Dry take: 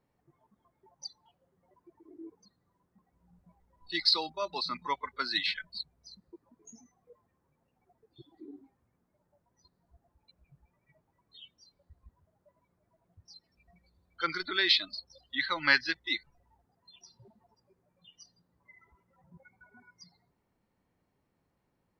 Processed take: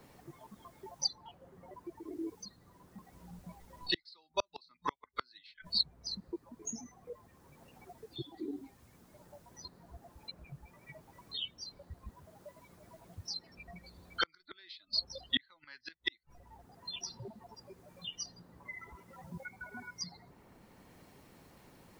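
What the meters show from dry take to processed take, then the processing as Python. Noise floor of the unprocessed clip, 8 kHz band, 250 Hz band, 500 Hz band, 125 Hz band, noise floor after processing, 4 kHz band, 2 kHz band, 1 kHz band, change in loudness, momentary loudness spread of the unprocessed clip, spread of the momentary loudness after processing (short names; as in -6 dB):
-78 dBFS, +10.0 dB, 0.0 dB, -2.5 dB, +6.0 dB, -69 dBFS, -4.5 dB, -11.0 dB, -6.0 dB, -10.0 dB, 18 LU, 23 LU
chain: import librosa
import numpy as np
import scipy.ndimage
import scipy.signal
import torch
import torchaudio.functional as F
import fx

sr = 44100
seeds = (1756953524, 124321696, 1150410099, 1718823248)

y = fx.gate_flip(x, sr, shuts_db=-26.0, range_db=-42)
y = fx.hpss(y, sr, part='harmonic', gain_db=-4)
y = fx.band_squash(y, sr, depth_pct=40)
y = y * 10.0 ** (13.5 / 20.0)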